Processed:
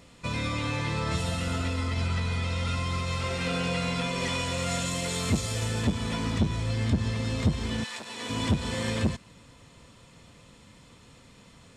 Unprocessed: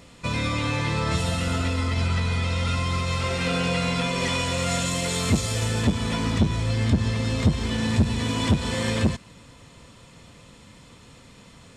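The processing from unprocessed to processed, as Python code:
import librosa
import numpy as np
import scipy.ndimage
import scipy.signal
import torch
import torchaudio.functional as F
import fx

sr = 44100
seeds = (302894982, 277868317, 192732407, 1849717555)

y = fx.highpass(x, sr, hz=fx.line((7.83, 1300.0), (8.29, 340.0)), slope=12, at=(7.83, 8.29), fade=0.02)
y = y * 10.0 ** (-4.5 / 20.0)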